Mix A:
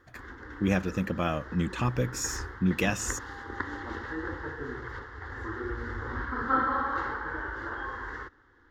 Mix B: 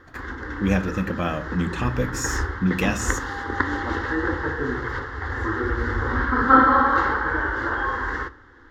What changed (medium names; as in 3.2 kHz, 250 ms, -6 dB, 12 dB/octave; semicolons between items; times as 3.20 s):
background +9.0 dB; reverb: on, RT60 0.40 s